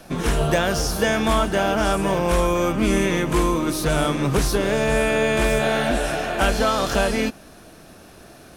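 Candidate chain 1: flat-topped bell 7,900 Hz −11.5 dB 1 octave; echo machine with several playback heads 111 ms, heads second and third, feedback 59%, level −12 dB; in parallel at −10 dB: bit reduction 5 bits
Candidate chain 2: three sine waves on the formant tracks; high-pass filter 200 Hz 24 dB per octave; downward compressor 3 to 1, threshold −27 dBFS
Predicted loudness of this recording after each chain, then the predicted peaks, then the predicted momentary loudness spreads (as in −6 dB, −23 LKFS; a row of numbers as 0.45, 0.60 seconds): −18.0, −28.0 LKFS; −4.5, −14.5 dBFS; 4, 3 LU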